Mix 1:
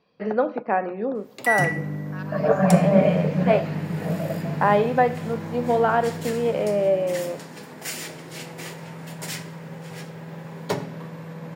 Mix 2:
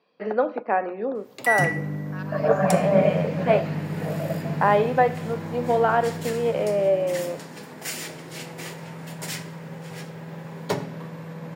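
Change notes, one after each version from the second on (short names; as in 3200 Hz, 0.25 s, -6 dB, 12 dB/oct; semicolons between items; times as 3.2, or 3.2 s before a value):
first voice: add BPF 260–5500 Hz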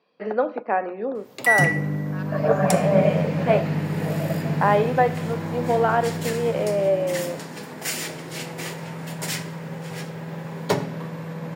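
background +4.0 dB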